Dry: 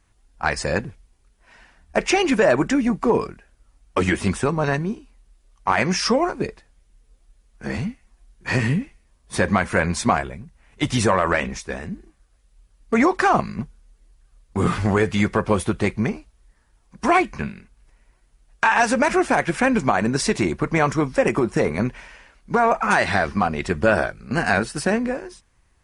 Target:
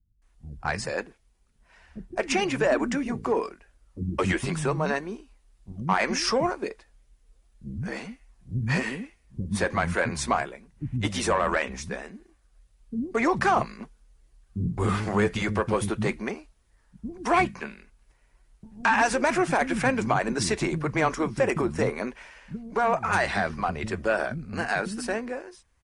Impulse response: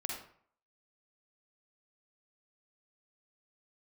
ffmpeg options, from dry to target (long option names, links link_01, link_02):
-filter_complex "[0:a]dynaudnorm=framelen=550:gausssize=13:maxgain=6dB,asoftclip=type=tanh:threshold=-4dB,acrossover=split=240[link_01][link_02];[link_02]adelay=220[link_03];[link_01][link_03]amix=inputs=2:normalize=0,volume=-6dB"